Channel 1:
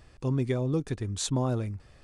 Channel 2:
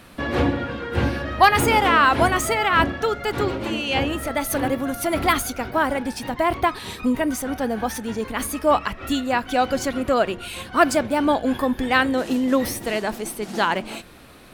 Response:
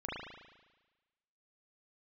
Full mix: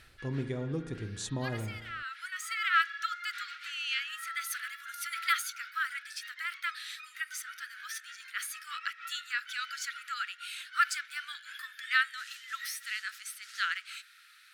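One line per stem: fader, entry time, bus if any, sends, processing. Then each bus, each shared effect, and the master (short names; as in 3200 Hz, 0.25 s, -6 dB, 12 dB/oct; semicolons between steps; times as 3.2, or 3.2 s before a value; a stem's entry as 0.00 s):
-9.0 dB, 0.00 s, send -9 dB, dry
-4.0 dB, 0.00 s, no send, rippled Chebyshev high-pass 1300 Hz, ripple 3 dB; high shelf 6600 Hz -5.5 dB; auto duck -15 dB, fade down 0.30 s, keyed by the first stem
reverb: on, RT60 1.2 s, pre-delay 36 ms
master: dry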